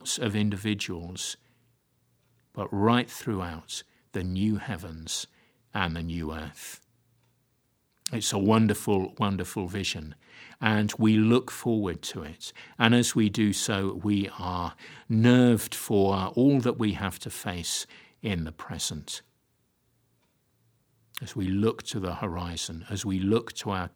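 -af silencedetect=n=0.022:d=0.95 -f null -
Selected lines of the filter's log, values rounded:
silence_start: 1.33
silence_end: 2.57 | silence_duration: 1.24
silence_start: 6.74
silence_end: 8.06 | silence_duration: 1.33
silence_start: 19.18
silence_end: 21.15 | silence_duration: 1.96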